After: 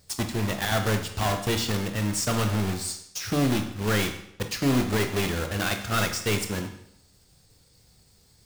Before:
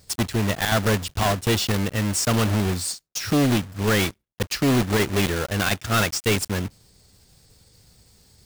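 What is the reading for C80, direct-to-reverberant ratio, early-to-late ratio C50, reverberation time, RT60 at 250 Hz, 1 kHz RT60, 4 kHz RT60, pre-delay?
11.5 dB, 5.0 dB, 8.5 dB, 0.70 s, 0.75 s, 0.70 s, 0.70 s, 13 ms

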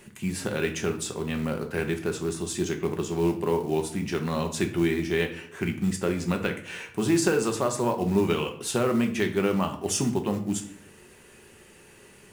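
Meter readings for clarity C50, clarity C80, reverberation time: 11.0 dB, 14.5 dB, 0.60 s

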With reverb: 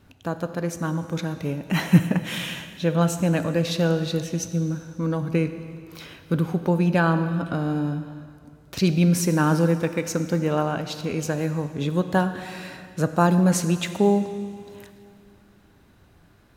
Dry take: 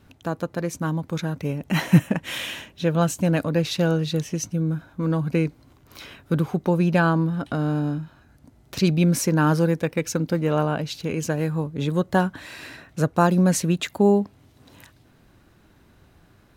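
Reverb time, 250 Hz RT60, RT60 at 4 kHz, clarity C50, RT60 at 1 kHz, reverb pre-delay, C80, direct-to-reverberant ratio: 2.3 s, 2.4 s, 2.1 s, 10.5 dB, 2.3 s, 4 ms, 11.0 dB, 9.5 dB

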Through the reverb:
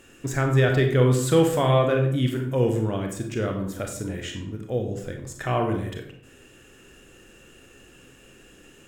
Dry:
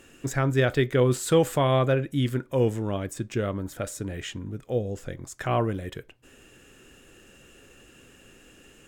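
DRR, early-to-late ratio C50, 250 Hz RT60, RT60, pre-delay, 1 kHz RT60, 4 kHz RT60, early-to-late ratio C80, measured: 3.0 dB, 6.0 dB, 0.80 s, 0.70 s, 28 ms, 0.60 s, 0.45 s, 10.0 dB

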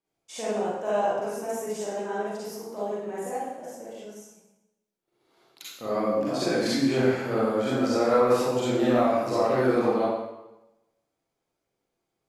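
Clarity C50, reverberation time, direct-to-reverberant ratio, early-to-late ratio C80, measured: −4.0 dB, 1.0 s, −9.5 dB, 1.0 dB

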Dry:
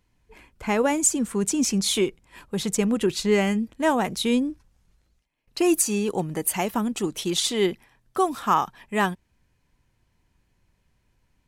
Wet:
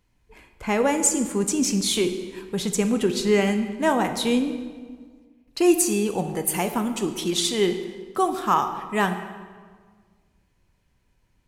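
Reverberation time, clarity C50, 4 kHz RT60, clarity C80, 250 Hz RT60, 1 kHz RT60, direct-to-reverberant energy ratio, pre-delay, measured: 1.6 s, 9.0 dB, 1.1 s, 10.5 dB, 1.9 s, 1.6 s, 7.0 dB, 10 ms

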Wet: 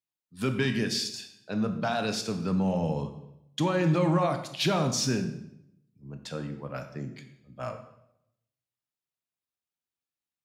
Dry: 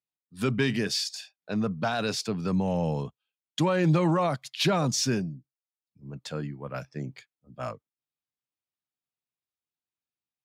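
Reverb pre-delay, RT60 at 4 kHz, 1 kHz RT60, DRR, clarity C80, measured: 16 ms, 0.70 s, 0.75 s, 6.5 dB, 12.0 dB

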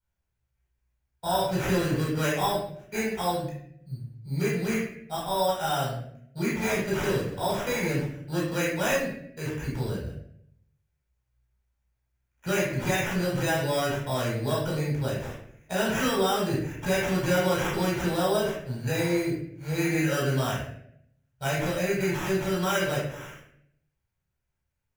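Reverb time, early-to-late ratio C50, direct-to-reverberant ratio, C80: 0.70 s, 2.0 dB, −5.5 dB, 6.0 dB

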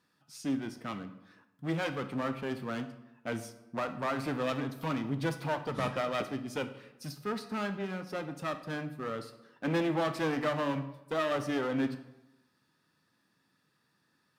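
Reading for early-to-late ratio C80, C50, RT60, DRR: 14.5 dB, 11.5 dB, 0.90 s, 9.0 dB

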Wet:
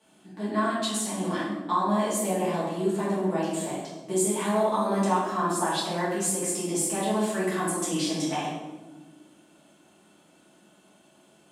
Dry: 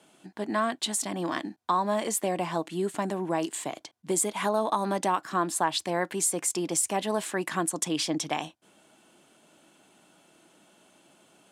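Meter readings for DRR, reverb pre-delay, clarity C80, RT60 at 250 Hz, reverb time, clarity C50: −9.0 dB, 5 ms, 3.0 dB, 2.1 s, 1.3 s, 0.0 dB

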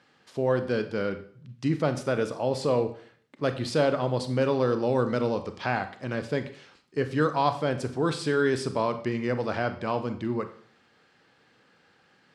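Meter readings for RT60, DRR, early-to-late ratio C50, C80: 0.55 s, 9.0 dB, 12.0 dB, 15.5 dB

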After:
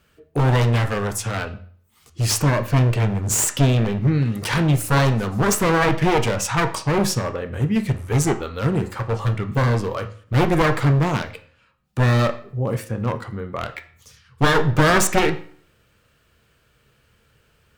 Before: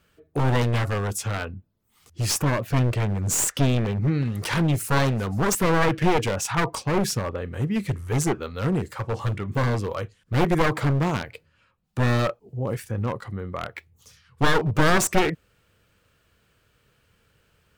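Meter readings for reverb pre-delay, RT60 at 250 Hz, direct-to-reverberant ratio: 10 ms, 0.55 s, 7.5 dB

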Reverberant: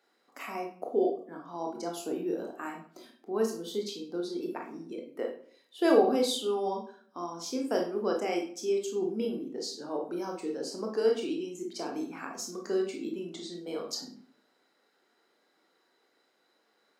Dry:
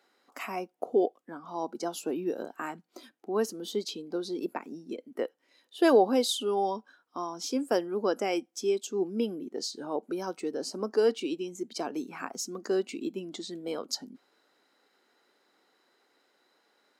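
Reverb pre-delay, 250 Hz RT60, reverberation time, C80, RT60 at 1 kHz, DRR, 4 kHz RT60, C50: 20 ms, 0.60 s, 0.55 s, 11.5 dB, 0.50 s, 1.0 dB, 0.40 s, 6.5 dB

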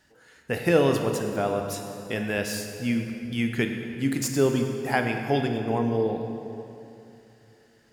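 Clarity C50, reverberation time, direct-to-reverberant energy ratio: 5.0 dB, 2.9 s, 4.0 dB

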